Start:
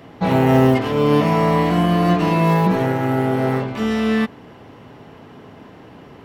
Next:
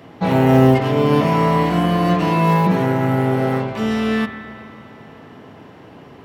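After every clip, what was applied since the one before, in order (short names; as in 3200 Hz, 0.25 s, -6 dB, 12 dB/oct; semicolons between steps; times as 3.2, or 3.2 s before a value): HPF 62 Hz; spring tank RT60 2.9 s, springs 38/55 ms, chirp 40 ms, DRR 9 dB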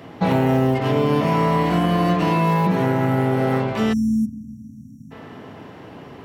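spectral delete 3.93–5.11, 280–5500 Hz; compressor 5:1, threshold -17 dBFS, peak gain reduction 9 dB; gain +2 dB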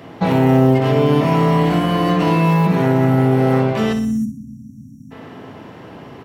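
feedback echo 61 ms, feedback 49%, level -9.5 dB; gain +2 dB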